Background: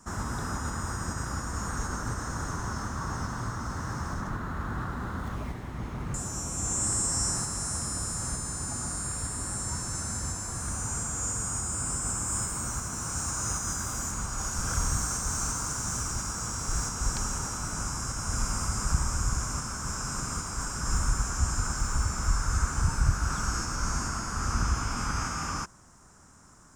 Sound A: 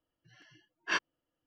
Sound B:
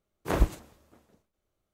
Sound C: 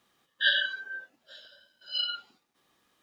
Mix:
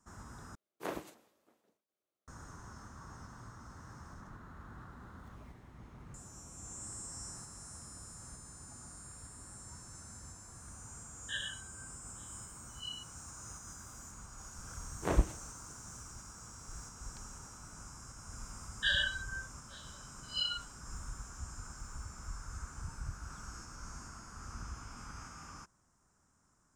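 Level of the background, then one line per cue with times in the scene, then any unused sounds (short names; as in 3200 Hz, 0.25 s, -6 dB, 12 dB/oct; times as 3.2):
background -17.5 dB
0.55 replace with B -9.5 dB + HPF 260 Hz
10.88 add C -10 dB + fixed phaser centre 950 Hz, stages 8
14.77 add B -4.5 dB + high shelf 4400 Hz -8.5 dB
18.42 add C -4.5 dB + limiter -15.5 dBFS
not used: A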